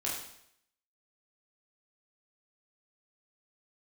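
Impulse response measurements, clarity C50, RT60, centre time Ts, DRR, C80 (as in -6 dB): 2.5 dB, 0.70 s, 50 ms, -6.0 dB, 6.0 dB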